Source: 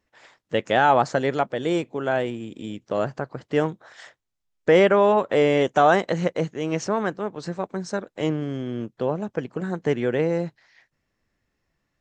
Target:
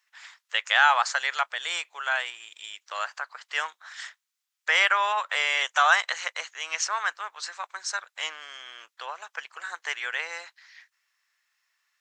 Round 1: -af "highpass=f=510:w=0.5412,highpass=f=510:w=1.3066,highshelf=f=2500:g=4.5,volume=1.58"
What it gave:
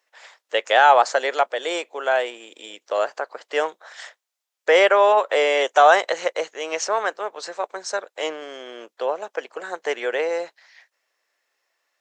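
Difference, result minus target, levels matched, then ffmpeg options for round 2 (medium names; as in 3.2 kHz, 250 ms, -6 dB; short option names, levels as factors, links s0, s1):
500 Hz band +15.0 dB
-af "highpass=f=1100:w=0.5412,highpass=f=1100:w=1.3066,highshelf=f=2500:g=4.5,volume=1.58"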